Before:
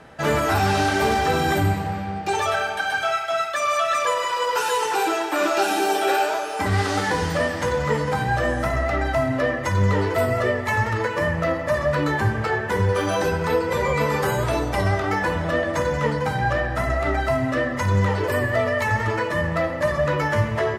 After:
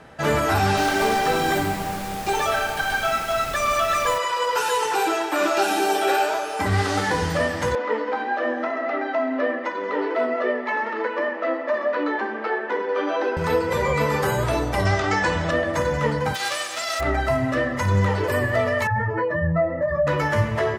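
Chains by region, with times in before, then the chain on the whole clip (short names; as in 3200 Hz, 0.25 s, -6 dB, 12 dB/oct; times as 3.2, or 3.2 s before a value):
0.76–4.17 HPF 190 Hz + added noise pink -35 dBFS
7.75–13.37 steep high-pass 230 Hz 96 dB/oct + air absorption 260 m
14.85–15.51 steep low-pass 7900 Hz + high shelf 2700 Hz +9 dB
16.34–16.99 spectral whitening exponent 0.1 + HPF 360 Hz + air absorption 93 m
18.87–20.07 spectral contrast raised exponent 1.9 + doubler 24 ms -5.5 dB
whole clip: dry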